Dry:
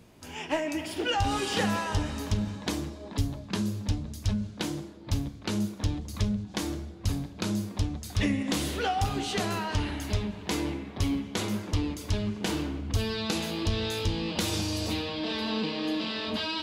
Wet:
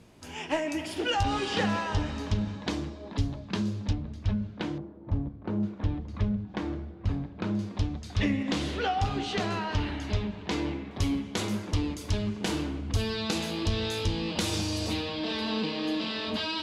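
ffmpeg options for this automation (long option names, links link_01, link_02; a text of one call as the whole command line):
ffmpeg -i in.wav -af "asetnsamples=nb_out_samples=441:pad=0,asendcmd='1.23 lowpass f 5000;3.93 lowpass f 2700;4.78 lowpass f 1000;5.63 lowpass f 2100;7.59 lowpass f 4700;10.91 lowpass f 11000',lowpass=11000" out.wav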